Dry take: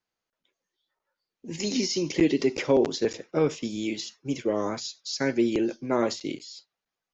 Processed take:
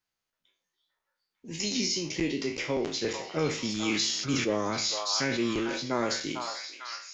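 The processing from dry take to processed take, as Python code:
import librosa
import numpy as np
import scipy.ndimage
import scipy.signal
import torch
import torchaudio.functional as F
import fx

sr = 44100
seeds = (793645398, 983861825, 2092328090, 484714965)

y = fx.spec_trails(x, sr, decay_s=0.41)
y = fx.rider(y, sr, range_db=10, speed_s=0.5)
y = fx.peak_eq(y, sr, hz=430.0, db=-7.0, octaves=2.6)
y = fx.echo_stepped(y, sr, ms=448, hz=980.0, octaves=0.7, feedback_pct=70, wet_db=-2.0)
y = fx.sustainer(y, sr, db_per_s=34.0, at=(3.65, 5.99))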